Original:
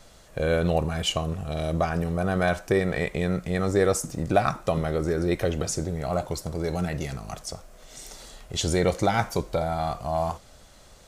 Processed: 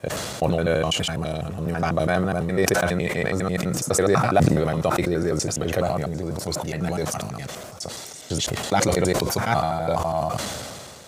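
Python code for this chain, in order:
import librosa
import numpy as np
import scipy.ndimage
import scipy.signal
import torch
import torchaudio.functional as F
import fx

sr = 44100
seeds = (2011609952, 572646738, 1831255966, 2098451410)

y = fx.block_reorder(x, sr, ms=83.0, group=5)
y = scipy.signal.sosfilt(scipy.signal.butter(4, 89.0, 'highpass', fs=sr, output='sos'), y)
y = fx.sustainer(y, sr, db_per_s=27.0)
y = y * 10.0 ** (1.5 / 20.0)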